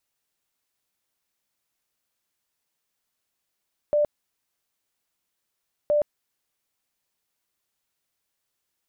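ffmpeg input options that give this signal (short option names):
-f lavfi -i "aevalsrc='0.133*sin(2*PI*592*mod(t,1.97))*lt(mod(t,1.97),70/592)':d=3.94:s=44100"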